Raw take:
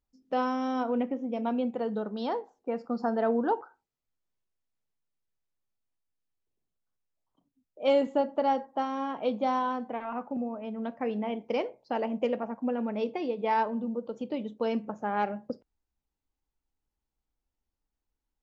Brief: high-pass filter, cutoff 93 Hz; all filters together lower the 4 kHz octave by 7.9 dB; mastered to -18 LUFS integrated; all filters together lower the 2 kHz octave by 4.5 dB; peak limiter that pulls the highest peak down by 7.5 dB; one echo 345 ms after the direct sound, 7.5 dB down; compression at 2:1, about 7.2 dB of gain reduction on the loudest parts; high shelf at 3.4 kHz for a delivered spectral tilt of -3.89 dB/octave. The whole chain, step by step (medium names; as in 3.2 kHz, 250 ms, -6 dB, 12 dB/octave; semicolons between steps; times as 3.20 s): high-pass 93 Hz; peaking EQ 2 kHz -3.5 dB; treble shelf 3.4 kHz -3.5 dB; peaking EQ 4 kHz -7.5 dB; compression 2:1, threshold -34 dBFS; peak limiter -29 dBFS; delay 345 ms -7.5 dB; trim +20 dB